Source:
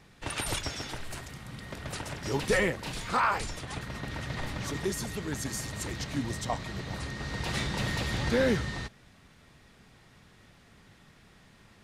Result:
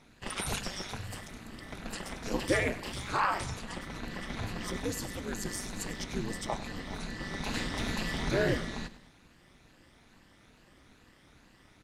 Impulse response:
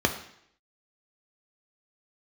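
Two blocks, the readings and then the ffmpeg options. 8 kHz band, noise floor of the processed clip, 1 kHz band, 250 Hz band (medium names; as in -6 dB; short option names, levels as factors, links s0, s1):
-2.0 dB, -61 dBFS, -2.5 dB, -2.0 dB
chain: -af "afftfilt=real='re*pow(10,7/40*sin(2*PI*(1.4*log(max(b,1)*sr/1024/100)/log(2)-(2.3)*(pts-256)/sr)))':imag='im*pow(10,7/40*sin(2*PI*(1.4*log(max(b,1)*sr/1024/100)/log(2)-(2.3)*(pts-256)/sr)))':win_size=1024:overlap=0.75,aeval=exprs='val(0)*sin(2*PI*100*n/s)':c=same,aecho=1:1:100|200|300|400:0.158|0.0777|0.0381|0.0186"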